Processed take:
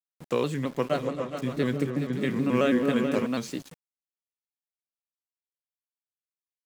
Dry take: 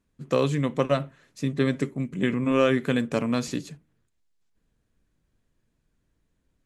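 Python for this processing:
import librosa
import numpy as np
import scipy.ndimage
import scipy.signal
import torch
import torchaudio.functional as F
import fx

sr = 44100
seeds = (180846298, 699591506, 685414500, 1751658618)

y = scipy.signal.sosfilt(scipy.signal.butter(2, 140.0, 'highpass', fs=sr, output='sos'), x)
y = np.where(np.abs(y) >= 10.0 ** (-39.5 / 20.0), y, 0.0)
y = fx.echo_opening(y, sr, ms=140, hz=400, octaves=2, feedback_pct=70, wet_db=-3, at=(0.91, 3.25), fade=0.02)
y = fx.vibrato_shape(y, sr, shape='square', rate_hz=4.6, depth_cents=100.0)
y = y * librosa.db_to_amplitude(-3.5)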